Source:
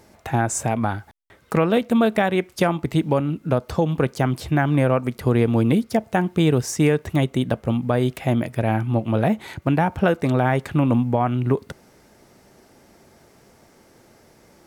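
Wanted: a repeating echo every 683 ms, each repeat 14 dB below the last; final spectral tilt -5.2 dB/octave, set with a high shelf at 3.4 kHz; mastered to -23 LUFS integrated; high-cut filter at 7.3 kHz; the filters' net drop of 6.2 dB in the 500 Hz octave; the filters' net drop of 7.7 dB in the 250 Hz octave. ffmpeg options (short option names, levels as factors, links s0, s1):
-af "lowpass=7300,equalizer=f=250:t=o:g=-9,equalizer=f=500:t=o:g=-5.5,highshelf=f=3400:g=6,aecho=1:1:683|1366:0.2|0.0399,volume=1.26"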